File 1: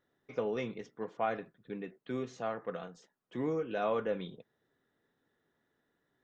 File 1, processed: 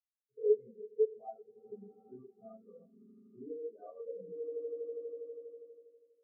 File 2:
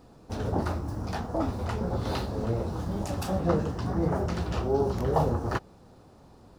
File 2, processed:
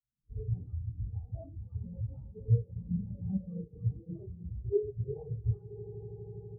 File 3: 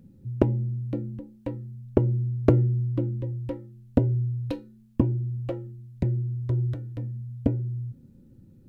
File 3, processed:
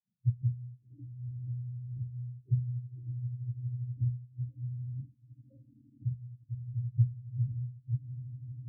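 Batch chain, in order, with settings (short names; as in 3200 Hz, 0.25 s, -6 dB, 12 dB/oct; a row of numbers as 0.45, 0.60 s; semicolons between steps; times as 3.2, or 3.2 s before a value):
low shelf 180 Hz +2.5 dB; swelling echo 81 ms, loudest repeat 8, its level -16 dB; compressor 12:1, threshold -37 dBFS; non-linear reverb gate 0.21 s falling, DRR -7 dB; spectral expander 4:1; gain +3.5 dB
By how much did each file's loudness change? -1.0, -7.5, -8.5 LU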